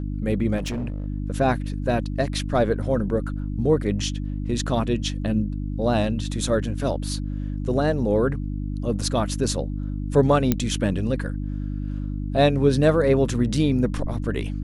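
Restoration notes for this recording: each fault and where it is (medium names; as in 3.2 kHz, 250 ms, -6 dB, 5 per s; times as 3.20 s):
hum 50 Hz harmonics 6 -28 dBFS
0.57–1.06 s: clipped -24 dBFS
10.52 s: pop -6 dBFS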